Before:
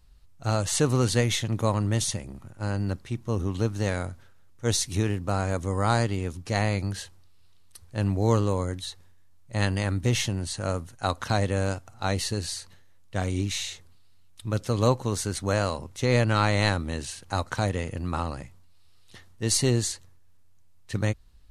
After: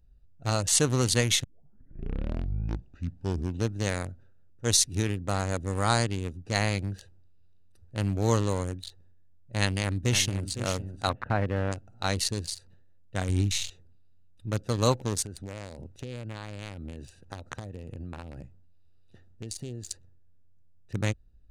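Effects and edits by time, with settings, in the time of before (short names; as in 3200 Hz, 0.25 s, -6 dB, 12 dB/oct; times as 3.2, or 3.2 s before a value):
1.44 tape start 2.20 s
9.61–10.51 echo throw 0.51 s, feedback 25%, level -8.5 dB
11.09–11.72 LPF 2100 Hz 24 dB/oct
13.29–13.7 low shelf 130 Hz +10 dB
15.22–19.91 compressor, threshold -31 dBFS
whole clip: Wiener smoothing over 41 samples; high shelf 2000 Hz +9.5 dB; gain -2.5 dB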